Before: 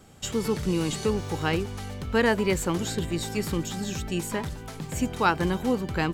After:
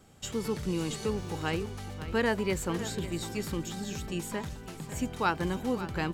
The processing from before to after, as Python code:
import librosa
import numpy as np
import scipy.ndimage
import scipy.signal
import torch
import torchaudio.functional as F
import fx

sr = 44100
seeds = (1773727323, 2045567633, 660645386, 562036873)

y = x + 10.0 ** (-13.5 / 20.0) * np.pad(x, (int(550 * sr / 1000.0), 0))[:len(x)]
y = y * librosa.db_to_amplitude(-5.5)